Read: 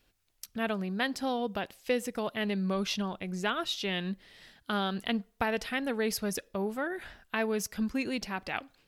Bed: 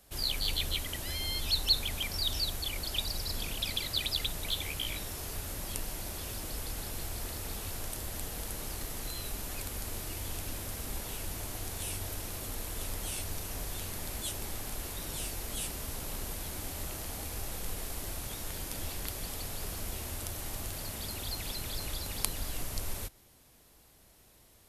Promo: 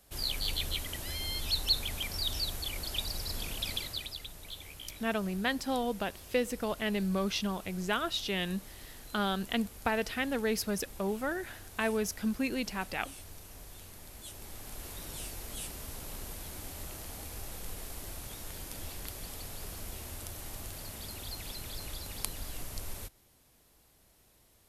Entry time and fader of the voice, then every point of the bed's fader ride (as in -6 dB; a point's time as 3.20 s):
4.45 s, -0.5 dB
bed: 3.76 s -1.5 dB
4.20 s -11 dB
14.12 s -11 dB
14.91 s -4 dB